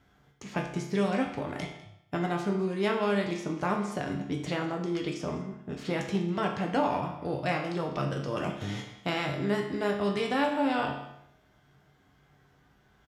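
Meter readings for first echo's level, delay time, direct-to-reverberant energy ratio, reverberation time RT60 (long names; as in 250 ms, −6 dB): −18.0 dB, 200 ms, 0.5 dB, 0.75 s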